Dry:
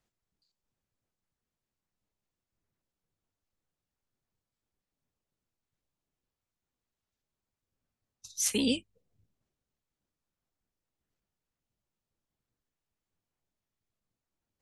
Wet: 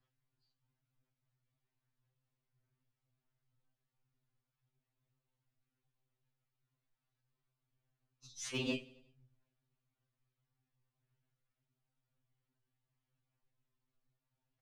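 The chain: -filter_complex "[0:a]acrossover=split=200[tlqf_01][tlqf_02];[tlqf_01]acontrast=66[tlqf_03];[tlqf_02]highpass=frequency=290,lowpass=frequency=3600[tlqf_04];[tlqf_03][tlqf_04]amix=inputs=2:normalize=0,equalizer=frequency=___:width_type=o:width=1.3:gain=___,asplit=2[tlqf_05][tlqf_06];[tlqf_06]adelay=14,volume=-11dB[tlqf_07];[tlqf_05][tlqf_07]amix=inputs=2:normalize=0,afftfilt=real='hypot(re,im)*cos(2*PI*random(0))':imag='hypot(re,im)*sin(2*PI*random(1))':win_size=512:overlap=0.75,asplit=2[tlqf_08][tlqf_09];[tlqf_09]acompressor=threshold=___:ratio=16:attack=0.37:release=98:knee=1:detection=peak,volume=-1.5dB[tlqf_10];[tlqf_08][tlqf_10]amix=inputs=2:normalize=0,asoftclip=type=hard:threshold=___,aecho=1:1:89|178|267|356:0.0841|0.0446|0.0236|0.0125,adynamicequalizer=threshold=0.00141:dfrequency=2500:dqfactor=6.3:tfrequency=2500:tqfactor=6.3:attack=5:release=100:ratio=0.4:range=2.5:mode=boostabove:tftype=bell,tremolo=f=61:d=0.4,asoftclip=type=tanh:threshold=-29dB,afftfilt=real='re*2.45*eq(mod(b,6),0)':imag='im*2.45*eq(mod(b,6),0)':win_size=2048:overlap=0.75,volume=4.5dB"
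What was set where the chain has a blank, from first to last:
510, -2.5, -49dB, -30dB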